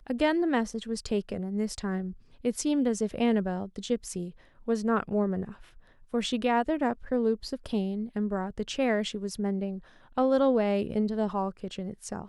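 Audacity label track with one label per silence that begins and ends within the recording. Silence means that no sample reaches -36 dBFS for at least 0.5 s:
5.520000	6.140000	silence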